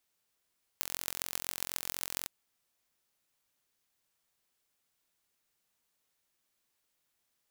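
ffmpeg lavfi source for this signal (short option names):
-f lavfi -i "aevalsrc='0.596*eq(mod(n,1000),0)*(0.5+0.5*eq(mod(n,6000),0))':d=1.46:s=44100"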